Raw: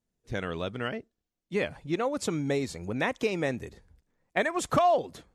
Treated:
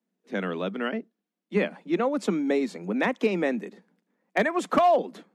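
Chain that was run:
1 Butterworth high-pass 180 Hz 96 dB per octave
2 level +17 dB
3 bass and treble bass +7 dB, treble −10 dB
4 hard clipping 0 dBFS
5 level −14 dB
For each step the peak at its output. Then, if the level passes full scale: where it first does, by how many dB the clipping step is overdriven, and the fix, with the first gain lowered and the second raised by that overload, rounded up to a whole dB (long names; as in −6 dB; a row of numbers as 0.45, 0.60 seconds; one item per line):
−12.0, +5.0, +5.5, 0.0, −14.0 dBFS
step 2, 5.5 dB
step 2 +11 dB, step 5 −8 dB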